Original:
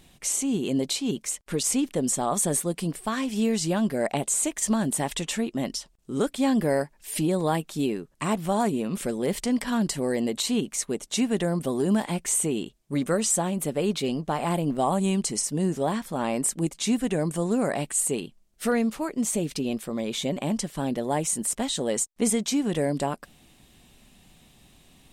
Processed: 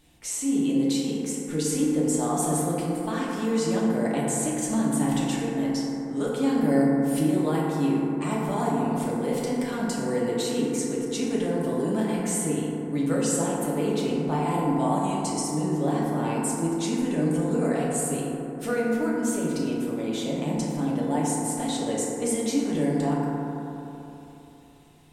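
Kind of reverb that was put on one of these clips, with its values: FDN reverb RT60 3.4 s, high-frequency decay 0.25×, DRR -6 dB; trim -7.5 dB

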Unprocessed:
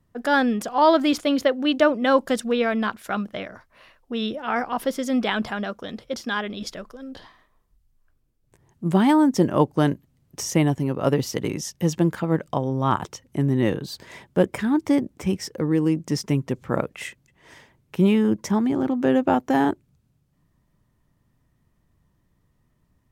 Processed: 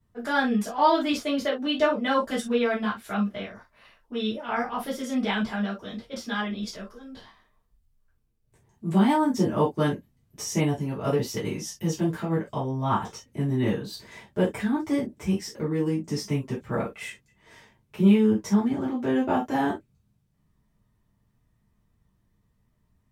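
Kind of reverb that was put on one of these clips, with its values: gated-style reverb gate 90 ms falling, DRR -8 dB; trim -12 dB

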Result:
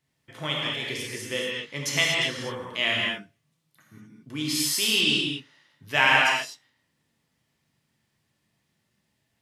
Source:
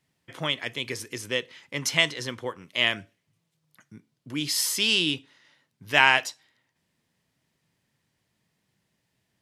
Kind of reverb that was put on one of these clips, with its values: gated-style reverb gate 270 ms flat, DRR -3.5 dB; trim -4 dB

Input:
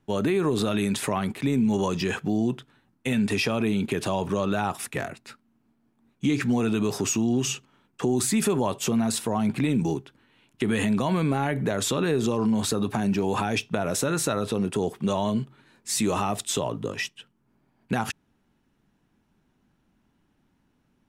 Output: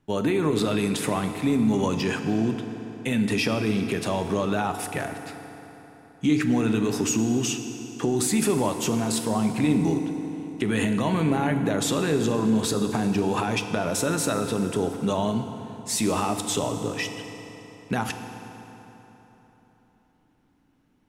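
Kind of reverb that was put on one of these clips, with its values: FDN reverb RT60 3.8 s, high-frequency decay 0.7×, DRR 6.5 dB

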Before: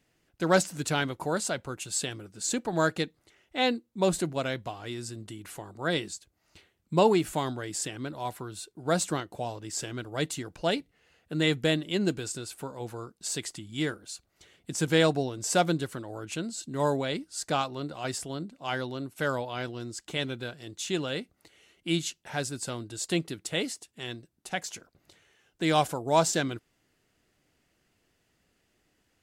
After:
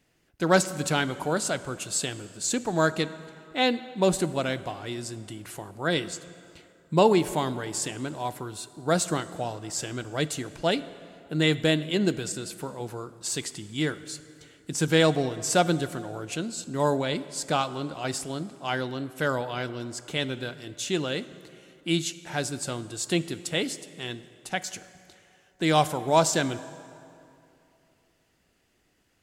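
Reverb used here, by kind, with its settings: plate-style reverb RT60 2.7 s, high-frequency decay 0.65×, DRR 14.5 dB; trim +2.5 dB

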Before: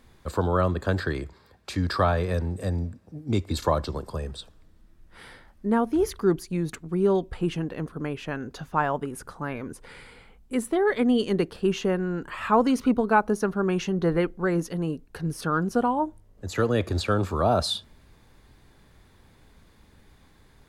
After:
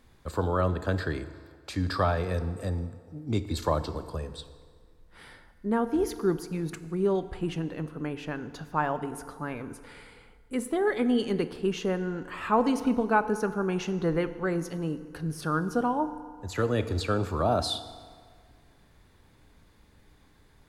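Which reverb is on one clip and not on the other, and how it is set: FDN reverb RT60 1.9 s, low-frequency decay 0.8×, high-frequency decay 0.7×, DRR 11 dB; trim -3.5 dB

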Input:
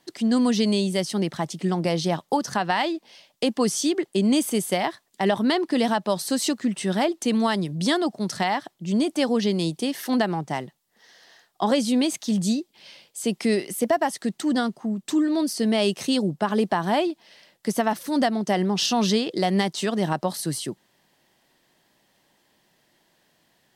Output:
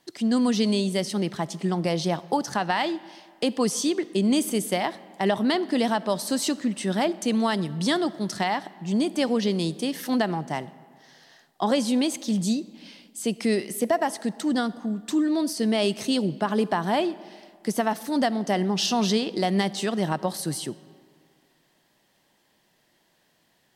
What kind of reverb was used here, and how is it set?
algorithmic reverb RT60 2 s, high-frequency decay 0.65×, pre-delay 5 ms, DRR 17.5 dB; trim -1.5 dB

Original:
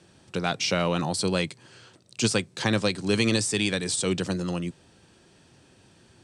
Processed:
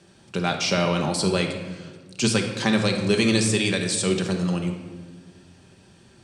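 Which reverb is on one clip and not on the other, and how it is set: simulated room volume 1200 m³, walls mixed, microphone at 1.2 m; trim +1 dB

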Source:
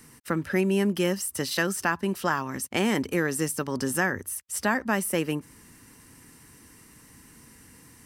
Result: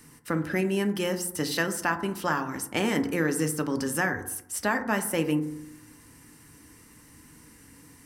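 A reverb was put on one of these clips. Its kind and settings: FDN reverb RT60 0.78 s, low-frequency decay 1.2×, high-frequency decay 0.3×, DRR 6.5 dB; trim -1.5 dB

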